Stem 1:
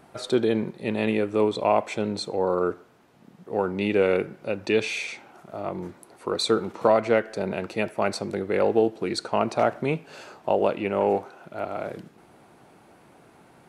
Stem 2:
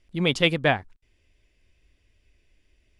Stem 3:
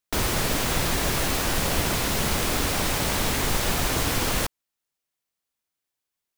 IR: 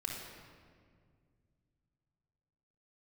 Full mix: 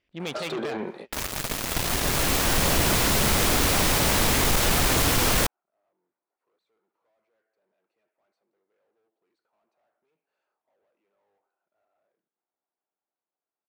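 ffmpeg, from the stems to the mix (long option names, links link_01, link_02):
-filter_complex "[0:a]dynaudnorm=framelen=320:gausssize=13:maxgain=11.5dB,asplit=2[link_01][link_02];[link_02]highpass=frequency=720:poles=1,volume=34dB,asoftclip=type=tanh:threshold=-1dB[link_03];[link_01][link_03]amix=inputs=2:normalize=0,lowpass=frequency=1200:poles=1,volume=-6dB,adelay=200,volume=-14.5dB[link_04];[1:a]acontrast=41,lowpass=3900,aeval=exprs='(tanh(7.94*val(0)+0.65)-tanh(0.65))/7.94':channel_layout=same,volume=-6dB,asplit=2[link_05][link_06];[2:a]dynaudnorm=framelen=260:gausssize=9:maxgain=11.5dB,acrusher=bits=2:mix=0:aa=0.5,asoftclip=type=tanh:threshold=-16.5dB,adelay=1000,volume=2.5dB[link_07];[link_06]apad=whole_len=612132[link_08];[link_04][link_08]sidechaingate=range=-50dB:threshold=-59dB:ratio=16:detection=peak[link_09];[link_09][link_05]amix=inputs=2:normalize=0,highpass=frequency=330:poles=1,alimiter=limit=-22.5dB:level=0:latency=1:release=33,volume=0dB[link_10];[link_07][link_10]amix=inputs=2:normalize=0,acompressor=threshold=-23dB:ratio=1.5"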